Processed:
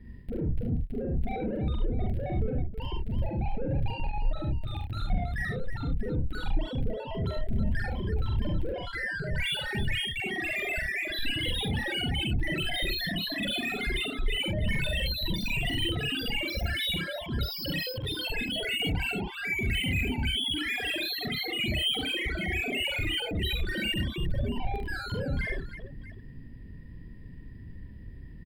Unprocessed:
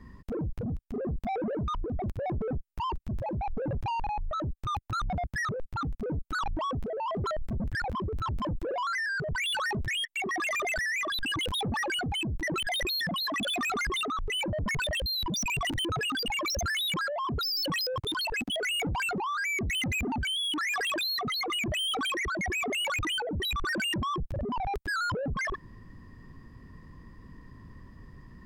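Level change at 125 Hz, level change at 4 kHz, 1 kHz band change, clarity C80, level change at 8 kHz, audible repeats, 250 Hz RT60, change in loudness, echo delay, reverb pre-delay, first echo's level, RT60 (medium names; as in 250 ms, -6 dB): +4.5 dB, +0.5 dB, -9.5 dB, no reverb, -8.5 dB, 3, no reverb, 0.0 dB, 44 ms, no reverb, -3.0 dB, no reverb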